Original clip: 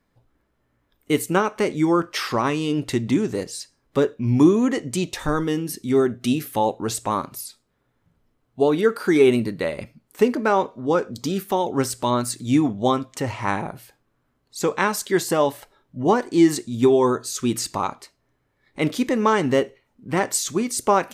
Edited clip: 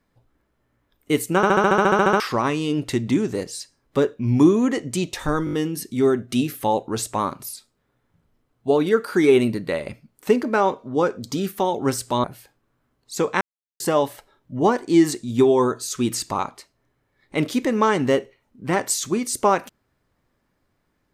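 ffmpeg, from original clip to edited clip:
-filter_complex "[0:a]asplit=20[a][b][c][d][e][f][g][h][i][j][k][l][m][n][o][p][q][r][s][t];[a]atrim=end=1.432[u];[b]atrim=start=1.358:end=1.432[v];[c]atrim=start=1.358:end=1.432[w];[d]atrim=start=1.358:end=1.432[x];[e]atrim=start=1.358:end=1.432[y];[f]atrim=start=1.358:end=1.432[z];[g]atrim=start=1.358:end=1.432[aa];[h]atrim=start=1.358:end=1.432[ab];[i]atrim=start=1.358:end=1.432[ac];[j]atrim=start=1.358:end=1.432[ad];[k]atrim=start=1.358:end=1.432[ae];[l]atrim=start=1.358:end=1.432[af];[m]atrim=start=2.198:end=5.472[ag];[n]atrim=start=5.448:end=5.472[ah];[o]atrim=start=5.448:end=5.472[ai];[p]atrim=start=5.448:end=5.472[aj];[q]atrim=start=5.448:end=12.162[ak];[r]atrim=start=13.678:end=14.85,asetpts=PTS-STARTPTS,afade=t=out:st=1.168:d=0.004:c=hsin[al];[s]atrim=start=14.85:end=15.24,asetpts=PTS-STARTPTS,volume=0[am];[t]atrim=start=15.24,asetpts=PTS-STARTPTS,afade=t=in:d=0.004:c=hsin[an];[u][v]acrossfade=d=0.004:c1=hsin:c2=hsin[ao];[ao][w]acrossfade=d=0.004:c1=hsin:c2=hsin[ap];[ap][x]acrossfade=d=0.004:c1=hsin:c2=hsin[aq];[aq][y]acrossfade=d=0.004:c1=hsin:c2=hsin[ar];[ar][z]acrossfade=d=0.004:c1=hsin:c2=hsin[as];[as][aa]acrossfade=d=0.004:c1=hsin:c2=hsin[at];[at][ab]acrossfade=d=0.004:c1=hsin:c2=hsin[au];[au][ac]acrossfade=d=0.004:c1=hsin:c2=hsin[av];[av][ad]acrossfade=d=0.004:c1=hsin:c2=hsin[aw];[aw][ae]acrossfade=d=0.004:c1=hsin:c2=hsin[ax];[ax][af]acrossfade=d=0.004:c1=hsin:c2=hsin[ay];[ay][ag]acrossfade=d=0.004:c1=hsin:c2=hsin[az];[az][ah]acrossfade=d=0.004:c1=hsin:c2=hsin[ba];[ba][ai]acrossfade=d=0.004:c1=hsin:c2=hsin[bb];[bb][aj]acrossfade=d=0.004:c1=hsin:c2=hsin[bc];[bc][ak]acrossfade=d=0.004:c1=hsin:c2=hsin[bd];[al][am][an]concat=n=3:v=0:a=1[be];[bd][be]acrossfade=d=0.004:c1=hsin:c2=hsin"

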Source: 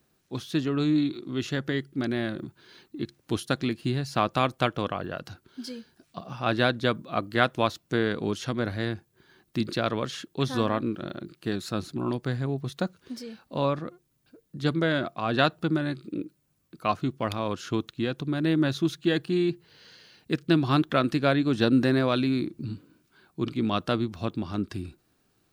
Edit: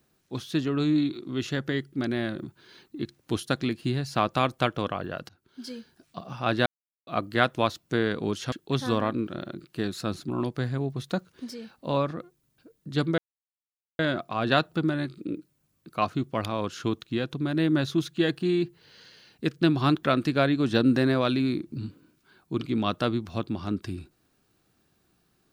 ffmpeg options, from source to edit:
-filter_complex "[0:a]asplit=6[a][b][c][d][e][f];[a]atrim=end=5.29,asetpts=PTS-STARTPTS,afade=t=out:st=5.286:d=0.004:c=hsin:silence=0.0707946[g];[b]atrim=start=5.29:end=6.66,asetpts=PTS-STARTPTS,afade=t=in:d=0.45:silence=0.0707946,afade=t=out:st=1.366:d=0.004:c=hsin[h];[c]atrim=start=6.66:end=7.07,asetpts=PTS-STARTPTS,volume=0[i];[d]atrim=start=7.07:end=8.522,asetpts=PTS-STARTPTS,afade=t=in:d=0.004:c=hsin[j];[e]atrim=start=10.198:end=14.86,asetpts=PTS-STARTPTS,afade=t=out:st=4.658:d=0.004:c=hsin,apad=pad_dur=0.81[k];[f]atrim=start=14.86,asetpts=PTS-STARTPTS,afade=t=in:d=0.004:c=hsin[l];[g][h][i][j]concat=n=4:v=0:a=1[m];[k][l]concat=n=2:v=0:a=1[n];[m][n]acrossfade=d=0.004:c1=hsin:c2=hsin"

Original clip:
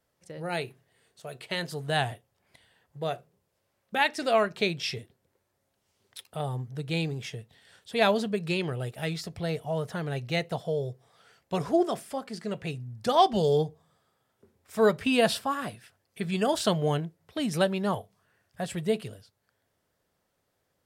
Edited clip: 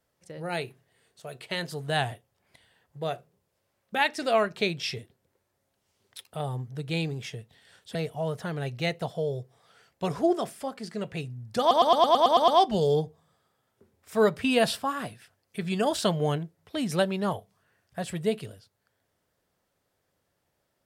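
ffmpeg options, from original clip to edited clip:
-filter_complex "[0:a]asplit=10[a][b][c][d][e][f][g][h][i][j];[a]atrim=end=7.952[k];[b]atrim=start=9.448:end=13.212[l];[c]atrim=start=13.098:end=13.212[m];[d]atrim=start=13.098:end=13.212[n];[e]atrim=start=13.098:end=13.212[o];[f]atrim=start=13.098:end=13.212[p];[g]atrim=start=13.098:end=13.212[q];[h]atrim=start=13.098:end=13.212[r];[i]atrim=start=13.098:end=13.212[s];[j]atrim=start=13.098[t];[k][l]acrossfade=d=0.004:c1=hsin:c2=hsin[u];[u][m]acrossfade=d=0.004:c1=hsin:c2=hsin[v];[v][n]acrossfade=d=0.004:c1=hsin:c2=hsin[w];[w][o]acrossfade=d=0.004:c1=hsin:c2=hsin[x];[x][p]acrossfade=d=0.004:c1=hsin:c2=hsin[y];[y][q]acrossfade=d=0.004:c1=hsin:c2=hsin[z];[z][r]acrossfade=d=0.004:c1=hsin:c2=hsin[aa];[aa][s]acrossfade=d=0.004:c1=hsin:c2=hsin[ab];[ab][t]acrossfade=d=0.004:c1=hsin:c2=hsin"

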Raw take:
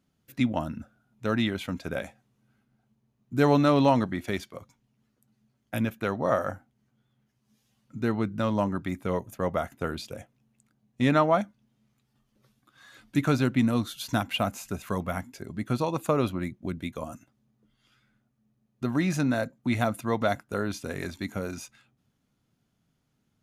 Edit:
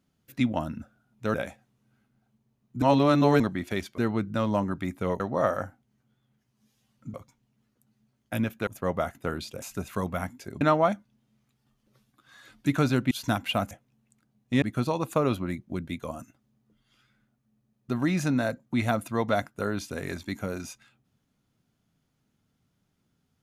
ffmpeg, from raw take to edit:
-filter_complex "[0:a]asplit=13[a][b][c][d][e][f][g][h][i][j][k][l][m];[a]atrim=end=1.342[n];[b]atrim=start=1.908:end=3.392[o];[c]atrim=start=3.388:end=3.972,asetpts=PTS-STARTPTS,areverse[p];[d]atrim=start=3.968:end=4.552[q];[e]atrim=start=8.018:end=9.242[r];[f]atrim=start=6.078:end=8.022[s];[g]atrim=start=4.548:end=6.082[t];[h]atrim=start=9.238:end=10.192[u];[i]atrim=start=14.558:end=15.552[v];[j]atrim=start=11.098:end=13.602[w];[k]atrim=start=13.958:end=14.562[x];[l]atrim=start=10.188:end=11.102[y];[m]atrim=start=15.548[z];[n][o]acrossfade=d=0.004:c1=hsin:c2=hsin[aa];[aa][p]acrossfade=d=0.004:c1=hsin:c2=hsin[ab];[ab][q]acrossfade=d=0.004:c1=hsin:c2=hsin[ac];[ac][r]acrossfade=d=0.004:c1=hsin:c2=hsin[ad];[ad][s]acrossfade=d=0.004:c1=hsin:c2=hsin[ae];[ae][t]acrossfade=d=0.004:c1=hsin:c2=hsin[af];[af][u]acrossfade=d=0.004:c1=hsin:c2=hsin[ag];[ag][v]acrossfade=d=0.004:c1=hsin:c2=hsin[ah];[ah][w]acrossfade=d=0.004:c1=hsin:c2=hsin[ai];[ai][x]acrossfade=d=0.004:c1=hsin:c2=hsin[aj];[aj][y]acrossfade=d=0.004:c1=hsin:c2=hsin[ak];[ak][z]acrossfade=d=0.004:c1=hsin:c2=hsin"

